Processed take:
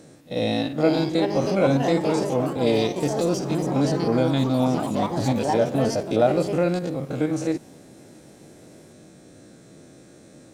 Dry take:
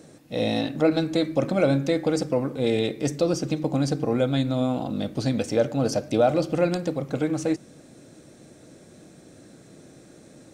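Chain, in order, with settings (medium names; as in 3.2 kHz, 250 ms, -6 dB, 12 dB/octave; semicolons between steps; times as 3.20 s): spectrogram pixelated in time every 50 ms; ever faster or slower copies 557 ms, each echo +4 st, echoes 3, each echo -6 dB; pre-echo 39 ms -18 dB; trim +2 dB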